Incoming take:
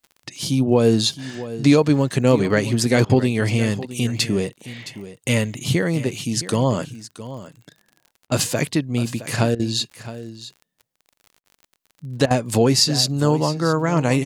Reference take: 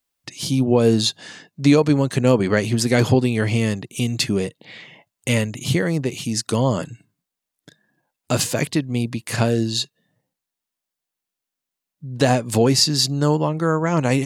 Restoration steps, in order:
click removal
repair the gap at 0:03.05/0:08.27/0:09.55/0:11.40/0:12.26, 45 ms
echo removal 666 ms −14.5 dB

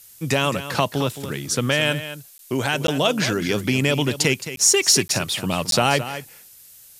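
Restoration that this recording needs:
repair the gap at 0:02.38/0:02.87/0:04.56/0:05.08/0:05.71, 12 ms
noise reduction from a noise print 20 dB
echo removal 218 ms −12 dB

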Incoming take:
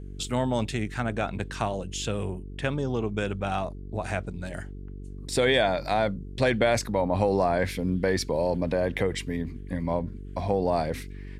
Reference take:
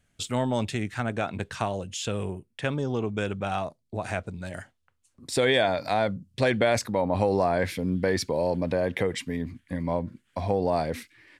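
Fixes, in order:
hum removal 48 Hz, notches 9

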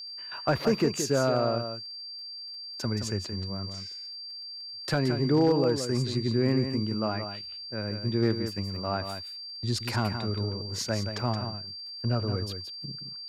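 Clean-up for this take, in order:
clipped peaks rebuilt −15.5 dBFS
click removal
notch filter 4,700 Hz, Q 30
echo removal 173 ms −8 dB

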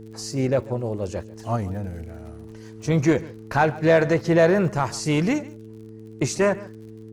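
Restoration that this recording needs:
click removal
hum removal 109.9 Hz, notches 4
echo removal 141 ms −20 dB

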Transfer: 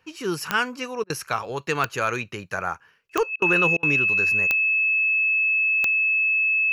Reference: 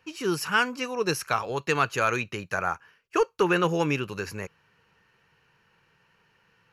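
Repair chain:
click removal
notch filter 2,600 Hz, Q 30
repair the gap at 0:01.04/0:03.36/0:03.77, 58 ms

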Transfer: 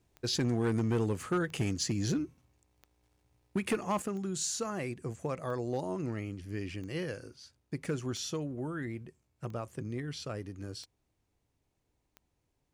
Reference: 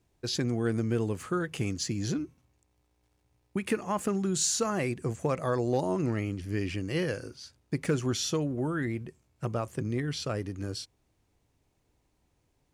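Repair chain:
clipped peaks rebuilt −24 dBFS
click removal
level correction +6.5 dB, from 0:04.02

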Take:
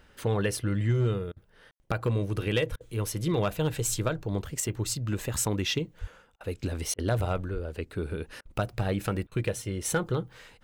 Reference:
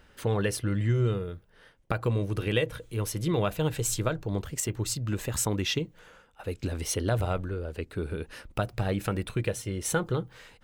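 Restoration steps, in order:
clipped peaks rebuilt −18.5 dBFS
0:02.70–0:02.82: high-pass filter 140 Hz 24 dB per octave
0:06.00–0:06.12: high-pass filter 140 Hz 24 dB per octave
0:07.53–0:07.65: high-pass filter 140 Hz 24 dB per octave
ambience match 0:01.71–0:01.80
repair the gap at 0:01.32/0:02.76/0:06.36/0:06.94/0:08.41/0:09.27, 44 ms

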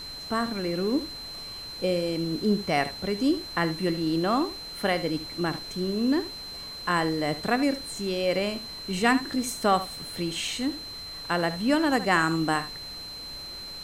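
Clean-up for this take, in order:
click removal
notch filter 4,100 Hz, Q 30
noise reduction from a noise print 30 dB
echo removal 74 ms −14 dB

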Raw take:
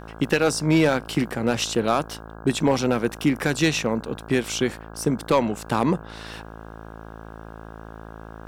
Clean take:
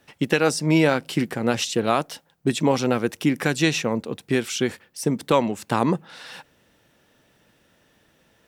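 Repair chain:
clipped peaks rebuilt −10 dBFS
hum removal 54.9 Hz, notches 30

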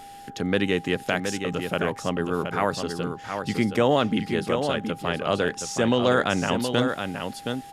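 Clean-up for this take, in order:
notch filter 800 Hz, Q 30
downward expander −33 dBFS, range −21 dB
echo removal 721 ms −6.5 dB

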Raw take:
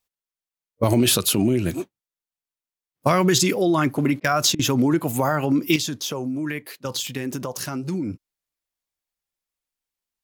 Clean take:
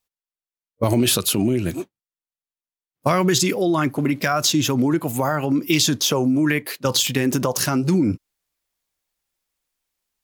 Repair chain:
repair the gap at 0:04.20/0:04.55, 41 ms
level correction +8.5 dB, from 0:05.76

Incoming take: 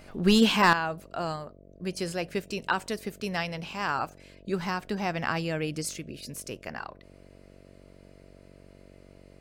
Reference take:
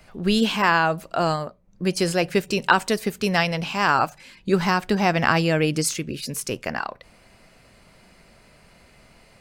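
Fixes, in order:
clipped peaks rebuilt −12 dBFS
hum removal 47.2 Hz, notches 14
level 0 dB, from 0:00.73 +10 dB

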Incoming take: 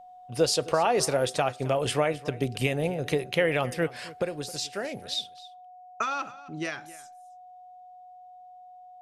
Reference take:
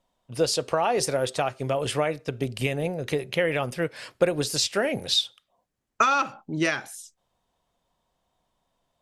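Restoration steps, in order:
notch filter 730 Hz, Q 30
echo removal 266 ms −18.5 dB
level correction +8.5 dB, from 0:04.22

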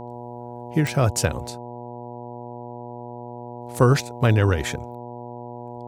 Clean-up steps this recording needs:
click removal
hum removal 120.7 Hz, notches 8

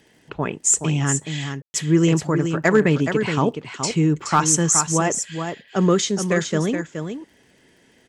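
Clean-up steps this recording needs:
clipped peaks rebuilt −6 dBFS
click removal
ambience match 0:01.62–0:01.74
echo removal 422 ms −7.5 dB

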